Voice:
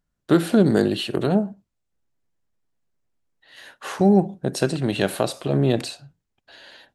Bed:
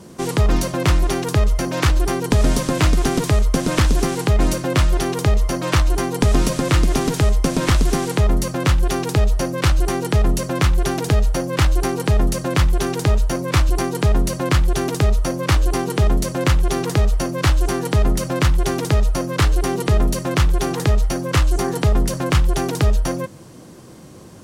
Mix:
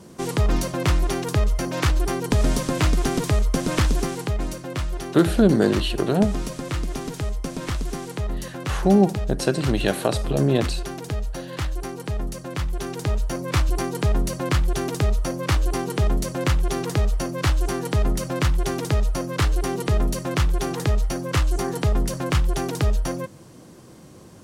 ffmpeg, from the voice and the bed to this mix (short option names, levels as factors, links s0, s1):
-filter_complex "[0:a]adelay=4850,volume=1[s0];[1:a]volume=1.33,afade=t=out:st=3.86:d=0.61:silence=0.446684,afade=t=in:st=12.57:d=1.02:silence=0.473151[s1];[s0][s1]amix=inputs=2:normalize=0"